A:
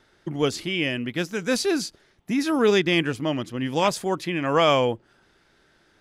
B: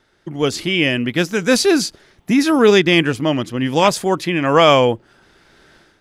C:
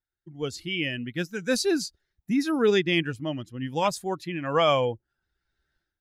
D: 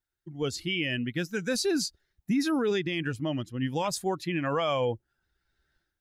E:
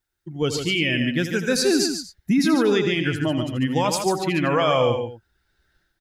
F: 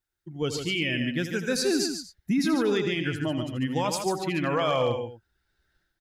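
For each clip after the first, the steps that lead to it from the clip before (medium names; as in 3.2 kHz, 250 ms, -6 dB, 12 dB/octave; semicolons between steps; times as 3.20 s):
level rider gain up to 13 dB
expander on every frequency bin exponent 1.5; trim -8.5 dB
peak limiter -22 dBFS, peak gain reduction 11 dB; trim +2.5 dB
multi-tap echo 82/144/237 ms -10.5/-7/-18 dB; trim +7 dB
hard clipper -11 dBFS, distortion -33 dB; trim -5.5 dB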